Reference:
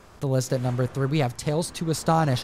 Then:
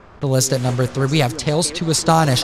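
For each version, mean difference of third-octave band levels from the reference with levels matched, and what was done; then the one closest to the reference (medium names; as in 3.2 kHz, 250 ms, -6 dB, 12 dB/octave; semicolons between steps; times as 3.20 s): 3.5 dB: level-controlled noise filter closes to 1.7 kHz, open at -18 dBFS; treble shelf 3.1 kHz +11.5 dB; repeats whose band climbs or falls 168 ms, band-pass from 330 Hz, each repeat 1.4 oct, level -10 dB; trim +6 dB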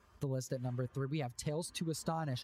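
4.5 dB: expander on every frequency bin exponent 1.5; compression 6:1, threshold -35 dBFS, peak gain reduction 16.5 dB; high-pass 58 Hz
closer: first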